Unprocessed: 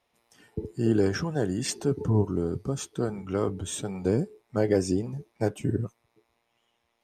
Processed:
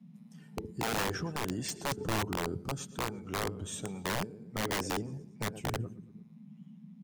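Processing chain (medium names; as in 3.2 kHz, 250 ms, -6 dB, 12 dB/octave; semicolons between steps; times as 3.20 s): band noise 150–230 Hz -45 dBFS; feedback delay 115 ms, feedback 50%, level -17.5 dB; integer overflow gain 19 dB; trim -6.5 dB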